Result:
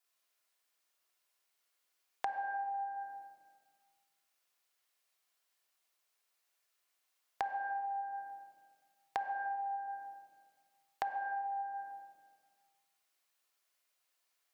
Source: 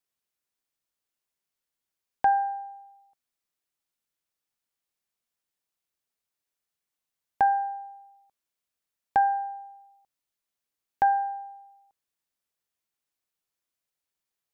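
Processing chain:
high-pass filter 580 Hz 12 dB per octave
rectangular room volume 1,700 cubic metres, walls mixed, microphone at 3.2 metres
downward compressor 5 to 1, threshold −40 dBFS, peak gain reduction 19 dB
level +2.5 dB

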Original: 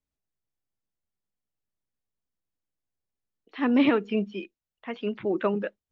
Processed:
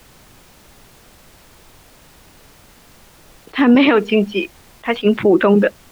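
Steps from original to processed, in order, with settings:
0:03.75–0:05.05: low-shelf EQ 230 Hz −11 dB
background noise pink −65 dBFS
boost into a limiter +21.5 dB
level that may rise only so fast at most 430 dB per second
level −3 dB

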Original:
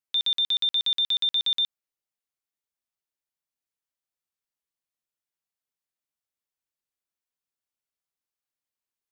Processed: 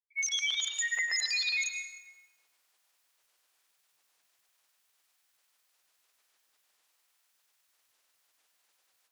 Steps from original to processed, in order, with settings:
spectral magnitudes quantised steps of 30 dB
high-pass filter 810 Hz 12 dB per octave
reversed playback
upward compression, threshold −45 dBFS
reversed playback
granular cloud, pitch spread up and down by 12 semitones
on a send: convolution reverb RT60 1.4 s, pre-delay 93 ms, DRR 3 dB
on the sum: level −5.5 dB

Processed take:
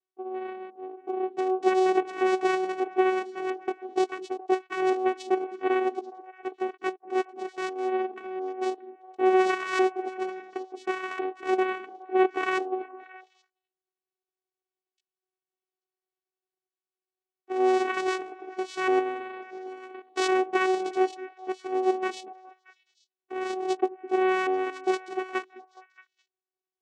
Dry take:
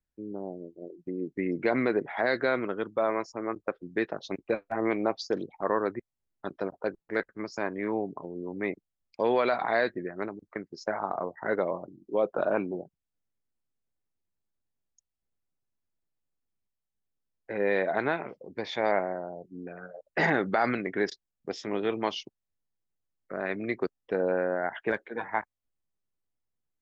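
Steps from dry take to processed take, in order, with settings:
pitch shifter swept by a sawtooth +12 semitones, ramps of 699 ms
channel vocoder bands 4, saw 374 Hz
echo through a band-pass that steps 209 ms, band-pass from 270 Hz, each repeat 1.4 octaves, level −12 dB
level +5 dB

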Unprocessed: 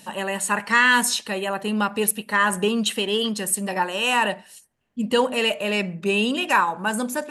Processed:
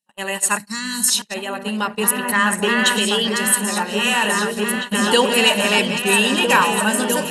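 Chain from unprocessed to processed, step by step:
delay that plays each chunk backwards 122 ms, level −10 dB
0:01.24–0:03.29: high-shelf EQ 5,700 Hz −4.5 dB
echo whose low-pass opens from repeat to repeat 652 ms, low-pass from 200 Hz, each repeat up 2 octaves, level 0 dB
noise gate −26 dBFS, range −44 dB
high-shelf EQ 2,400 Hz +9.5 dB
automatic gain control gain up to 3.5 dB
0:00.58–0:01.09: gain on a spectral selection 310–3,800 Hz −16 dB

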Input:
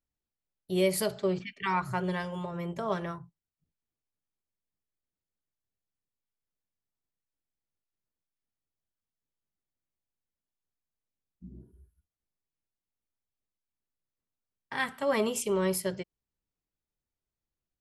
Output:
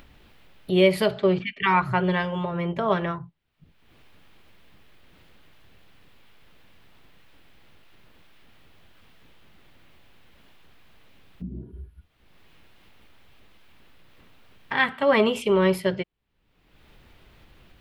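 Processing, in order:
high shelf with overshoot 4,600 Hz −14 dB, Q 1.5
upward compression, threshold −36 dBFS
level +8 dB

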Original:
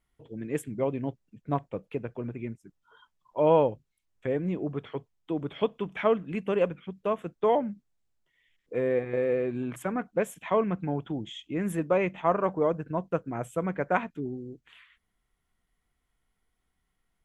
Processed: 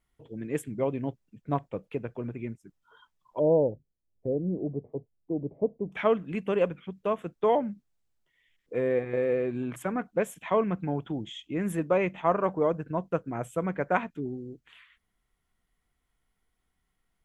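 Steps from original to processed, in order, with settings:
0:03.39–0:05.92: inverse Chebyshev low-pass filter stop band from 1,300 Hz, stop band 40 dB

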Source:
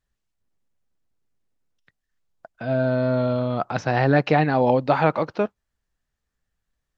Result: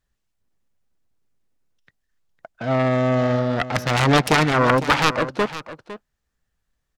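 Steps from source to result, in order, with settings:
phase distortion by the signal itself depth 0.89 ms
on a send: single-tap delay 506 ms −14 dB
on the sum: level +3 dB

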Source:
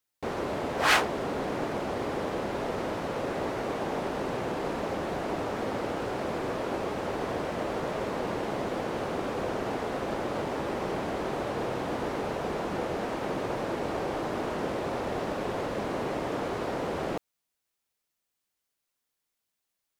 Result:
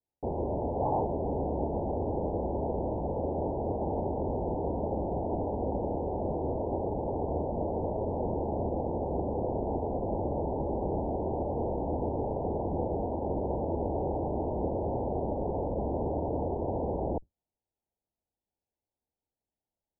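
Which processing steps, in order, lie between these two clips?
sub-octave generator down 2 octaves, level 0 dB
Butterworth low-pass 930 Hz 96 dB per octave

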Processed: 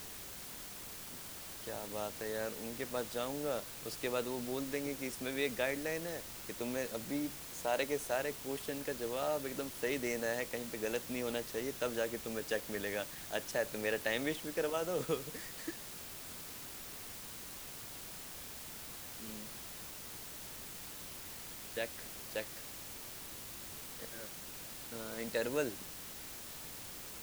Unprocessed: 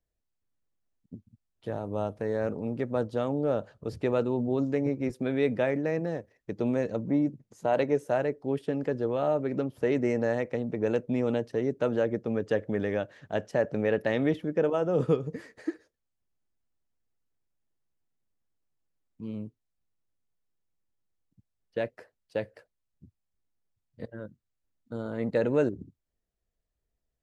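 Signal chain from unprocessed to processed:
first difference
in parallel at −5.5 dB: bit-depth reduction 8 bits, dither triangular
on the sum: low-shelf EQ 430 Hz +9.5 dB
level +5.5 dB

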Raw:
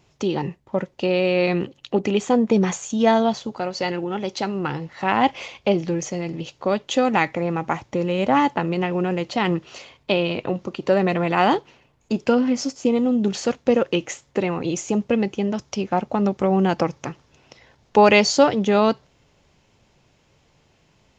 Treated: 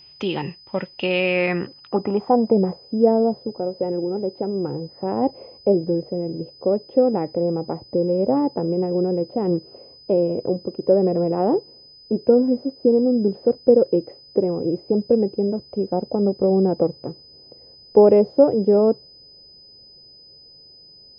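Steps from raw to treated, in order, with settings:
low-pass filter sweep 3,000 Hz → 480 Hz, 0:01.11–0:02.79
steady tone 5,000 Hz −43 dBFS
level −2 dB

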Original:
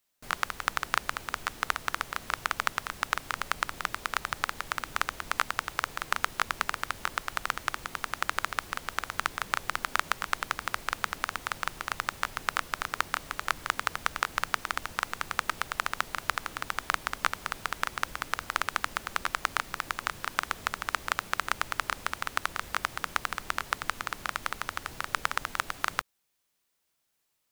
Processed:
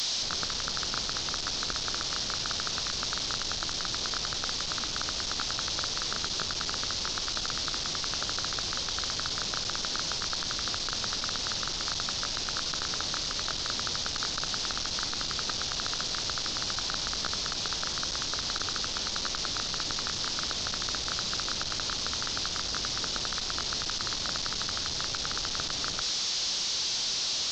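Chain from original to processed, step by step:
linear delta modulator 32 kbit/s, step −33 dBFS
high shelf with overshoot 3,000 Hz +11 dB, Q 1.5
echo with a time of its own for lows and highs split 1,500 Hz, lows 95 ms, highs 218 ms, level −15 dB

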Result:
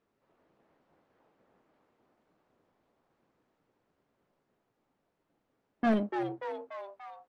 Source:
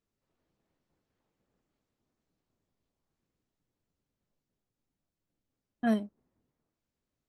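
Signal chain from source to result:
high-shelf EQ 2,900 Hz −8.5 dB
mid-hump overdrive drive 24 dB, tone 1,200 Hz, clips at −18.5 dBFS
echo with shifted repeats 291 ms, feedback 58%, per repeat +130 Hz, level −7 dB

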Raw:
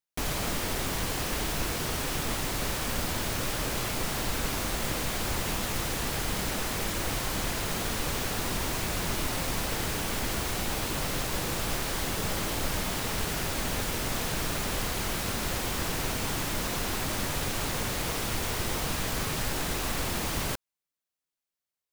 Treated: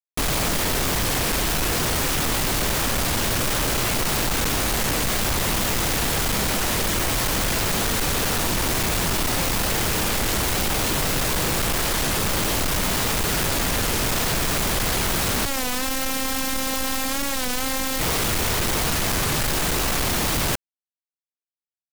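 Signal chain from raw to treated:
log-companded quantiser 2 bits
0:15.46–0:18.00: phases set to zero 264 Hz
wow of a warped record 33 1/3 rpm, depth 100 cents
level +4 dB

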